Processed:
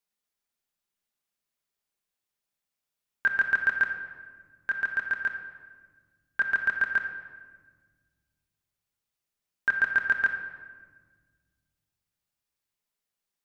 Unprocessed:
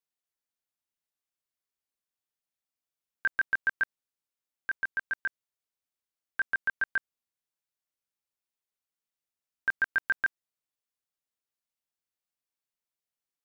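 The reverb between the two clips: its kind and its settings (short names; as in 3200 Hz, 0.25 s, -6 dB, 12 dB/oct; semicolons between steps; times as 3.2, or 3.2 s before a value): shoebox room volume 1700 m³, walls mixed, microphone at 1.3 m; gain +3 dB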